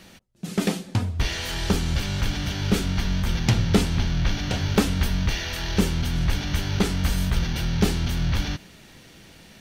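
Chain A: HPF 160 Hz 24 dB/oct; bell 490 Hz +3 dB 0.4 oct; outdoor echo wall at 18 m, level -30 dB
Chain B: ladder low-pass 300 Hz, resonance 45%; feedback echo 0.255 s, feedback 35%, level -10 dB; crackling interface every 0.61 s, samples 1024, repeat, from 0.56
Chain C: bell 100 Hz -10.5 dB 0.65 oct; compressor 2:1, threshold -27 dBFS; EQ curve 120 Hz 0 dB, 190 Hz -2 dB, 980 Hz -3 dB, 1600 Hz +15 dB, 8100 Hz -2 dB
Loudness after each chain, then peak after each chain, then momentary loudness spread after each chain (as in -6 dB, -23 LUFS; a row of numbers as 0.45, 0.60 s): -27.5, -32.0, -25.5 LUFS; -4.0, -12.0, -5.0 dBFS; 6, 10, 11 LU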